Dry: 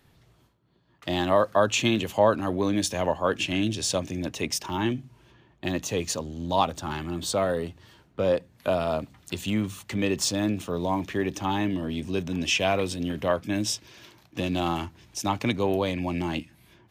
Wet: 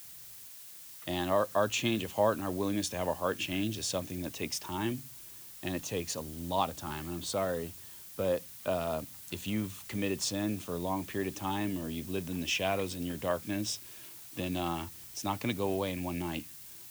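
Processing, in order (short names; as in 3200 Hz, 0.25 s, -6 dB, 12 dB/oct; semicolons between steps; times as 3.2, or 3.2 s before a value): added noise blue -42 dBFS; gain -7 dB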